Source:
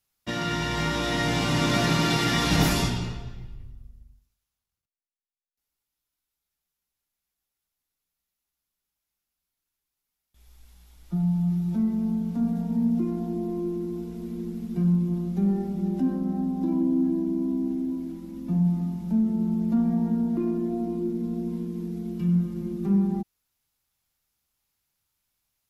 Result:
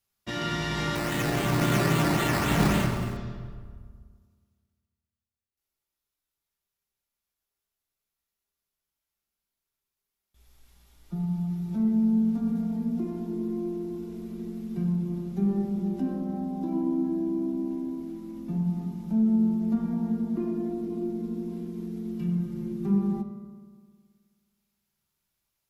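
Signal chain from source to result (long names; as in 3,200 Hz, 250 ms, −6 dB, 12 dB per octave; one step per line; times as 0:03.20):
0:00.95–0:03.17: sample-and-hold swept by an LFO 11×, swing 60% 3.7 Hz
convolution reverb RT60 1.7 s, pre-delay 3 ms, DRR 2.5 dB
level −3 dB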